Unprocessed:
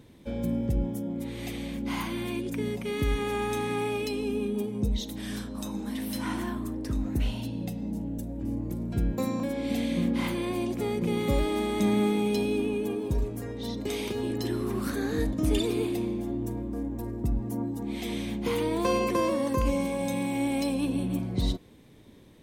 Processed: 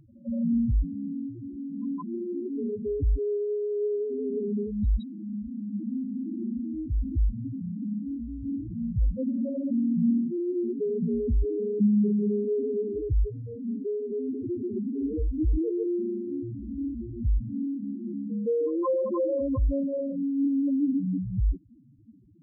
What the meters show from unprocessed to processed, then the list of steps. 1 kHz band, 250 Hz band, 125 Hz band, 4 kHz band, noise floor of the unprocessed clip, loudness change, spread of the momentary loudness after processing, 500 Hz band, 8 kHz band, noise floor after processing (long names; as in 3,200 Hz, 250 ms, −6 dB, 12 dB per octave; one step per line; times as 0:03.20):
below −10 dB, +1.5 dB, 0.0 dB, below −30 dB, −42 dBFS, +1.0 dB, 9 LU, +1.0 dB, below −35 dB, −43 dBFS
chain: spectral peaks only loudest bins 2
tuned comb filter 230 Hz, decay 0.23 s, harmonics all, mix 40%
backwards echo 167 ms −24 dB
level +9 dB